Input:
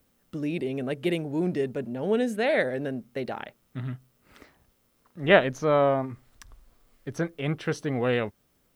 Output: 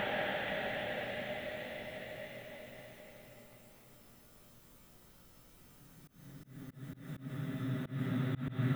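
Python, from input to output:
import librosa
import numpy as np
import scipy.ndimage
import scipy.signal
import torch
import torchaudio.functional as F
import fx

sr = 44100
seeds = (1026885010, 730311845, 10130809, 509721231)

y = fx.paulstretch(x, sr, seeds[0], factor=36.0, window_s=0.25, from_s=3.49)
y = fx.auto_swell(y, sr, attack_ms=164.0)
y = y * librosa.db_to_amplitude(8.0)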